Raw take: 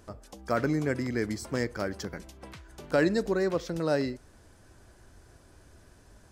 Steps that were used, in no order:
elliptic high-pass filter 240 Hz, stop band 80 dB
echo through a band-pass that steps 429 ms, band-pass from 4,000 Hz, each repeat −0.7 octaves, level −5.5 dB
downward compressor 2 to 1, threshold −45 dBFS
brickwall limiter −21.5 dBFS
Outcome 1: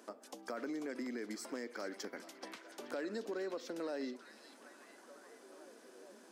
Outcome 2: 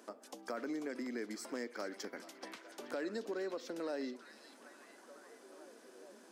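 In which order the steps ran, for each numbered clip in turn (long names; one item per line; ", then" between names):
brickwall limiter, then elliptic high-pass filter, then downward compressor, then echo through a band-pass that steps
elliptic high-pass filter, then brickwall limiter, then downward compressor, then echo through a band-pass that steps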